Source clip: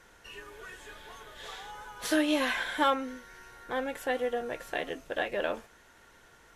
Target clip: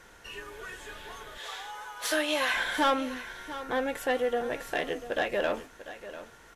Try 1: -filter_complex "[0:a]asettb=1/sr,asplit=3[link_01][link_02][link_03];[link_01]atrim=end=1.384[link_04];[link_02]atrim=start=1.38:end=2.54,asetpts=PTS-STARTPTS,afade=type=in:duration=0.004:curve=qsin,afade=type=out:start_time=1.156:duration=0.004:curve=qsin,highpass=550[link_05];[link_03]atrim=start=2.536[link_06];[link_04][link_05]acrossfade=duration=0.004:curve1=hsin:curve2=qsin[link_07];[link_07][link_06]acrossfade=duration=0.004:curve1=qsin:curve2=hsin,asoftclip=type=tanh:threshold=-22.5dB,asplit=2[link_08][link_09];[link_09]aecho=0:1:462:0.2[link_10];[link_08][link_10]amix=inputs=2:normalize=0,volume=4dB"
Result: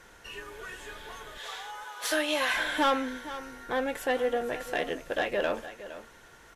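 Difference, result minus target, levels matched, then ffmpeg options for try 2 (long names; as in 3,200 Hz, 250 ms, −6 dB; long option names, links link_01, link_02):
echo 232 ms early
-filter_complex "[0:a]asettb=1/sr,asplit=3[link_01][link_02][link_03];[link_01]atrim=end=1.384[link_04];[link_02]atrim=start=1.38:end=2.54,asetpts=PTS-STARTPTS,afade=type=in:duration=0.004:curve=qsin,afade=type=out:start_time=1.156:duration=0.004:curve=qsin,highpass=550[link_05];[link_03]atrim=start=2.536[link_06];[link_04][link_05]acrossfade=duration=0.004:curve1=hsin:curve2=qsin[link_07];[link_07][link_06]acrossfade=duration=0.004:curve1=qsin:curve2=hsin,asoftclip=type=tanh:threshold=-22.5dB,asplit=2[link_08][link_09];[link_09]aecho=0:1:694:0.2[link_10];[link_08][link_10]amix=inputs=2:normalize=0,volume=4dB"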